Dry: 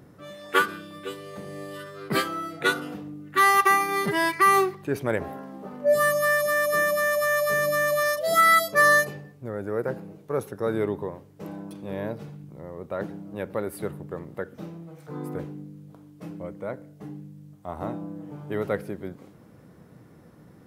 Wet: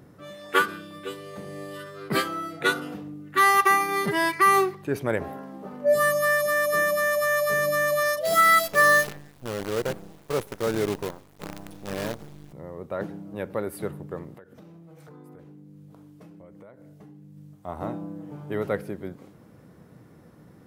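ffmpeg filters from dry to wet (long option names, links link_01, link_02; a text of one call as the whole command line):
ffmpeg -i in.wav -filter_complex "[0:a]asettb=1/sr,asplit=3[link_01][link_02][link_03];[link_01]atrim=end=8.254[link_04];[link_02]atrim=start=8.25:end=12.53,asetpts=PTS-STARTPTS,afade=type=in:duration=0.004:curve=qsin,afade=type=out:start_time=4.276:duration=0.004:curve=qsin,acrusher=bits=6:dc=4:mix=0:aa=0.000001[link_05];[link_03]atrim=start=12.526[link_06];[link_04][link_05]acrossfade=duration=0.004:curve1=hsin:curve2=qsin[link_07];[link_07][link_06]acrossfade=duration=0.004:curve1=qsin:curve2=hsin,asettb=1/sr,asplit=3[link_08][link_09][link_10];[link_08]atrim=end=14.344[link_11];[link_09]atrim=start=14.34:end=17.37,asetpts=PTS-STARTPTS,afade=type=in:duration=0.004:curve=qsin,afade=type=out:start_time=3.026:duration=0.004:curve=qsin,acompressor=threshold=-44dB:ratio=8:attack=3.2:release=140:knee=1:detection=peak[link_12];[link_10]atrim=start=17.366[link_13];[link_11][link_12]acrossfade=duration=0.004:curve1=hsin:curve2=qsin[link_14];[link_14][link_13]acrossfade=duration=0.004:curve1=qsin:curve2=hsin" out.wav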